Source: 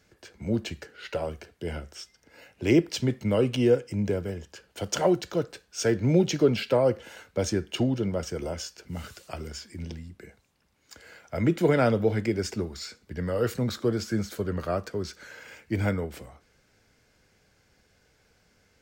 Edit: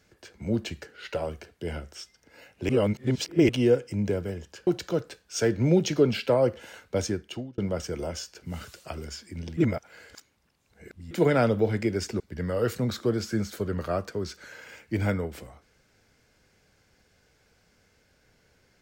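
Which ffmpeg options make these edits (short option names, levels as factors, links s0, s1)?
-filter_complex "[0:a]asplit=8[s0][s1][s2][s3][s4][s5][s6][s7];[s0]atrim=end=2.692[s8];[s1]atrim=start=2.688:end=3.492,asetpts=PTS-STARTPTS,areverse[s9];[s2]atrim=start=3.488:end=4.672[s10];[s3]atrim=start=5.098:end=8.01,asetpts=PTS-STARTPTS,afade=t=out:st=2.322:d=0.59[s11];[s4]atrim=start=8.01:end=10.002,asetpts=PTS-STARTPTS,afade=t=in:d=0.004:c=hsin[s12];[s5]atrim=start=9.998:end=11.542,asetpts=PTS-STARTPTS,areverse[s13];[s6]atrim=start=11.538:end=12.632[s14];[s7]atrim=start=12.988[s15];[s8][s9]acrossfade=d=0.004:c1=hsin:c2=hsin[s16];[s16][s10]acrossfade=d=0.004:c1=hsin:c2=hsin[s17];[s11][s12]concat=n=2:v=0:a=1[s18];[s17][s18]acrossfade=d=0.004:c1=hsin:c2=hsin[s19];[s19][s13]acrossfade=d=0.004:c1=hsin:c2=hsin[s20];[s20][s14]acrossfade=d=0.004:c1=hsin:c2=hsin[s21];[s21][s15]acrossfade=d=0.004:c1=hsin:c2=hsin"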